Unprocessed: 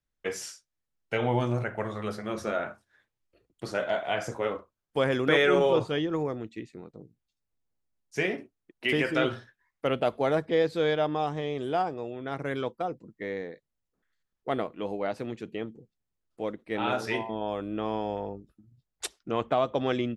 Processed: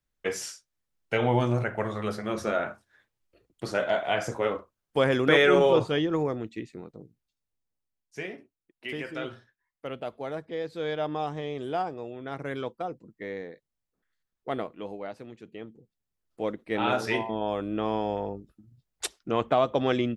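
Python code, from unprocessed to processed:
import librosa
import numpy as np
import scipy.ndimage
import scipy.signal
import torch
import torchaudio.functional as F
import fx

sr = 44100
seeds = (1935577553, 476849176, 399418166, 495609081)

y = fx.gain(x, sr, db=fx.line((6.79, 2.5), (8.33, -9.0), (10.6, -9.0), (11.12, -2.0), (14.65, -2.0), (15.31, -9.5), (16.46, 2.5)))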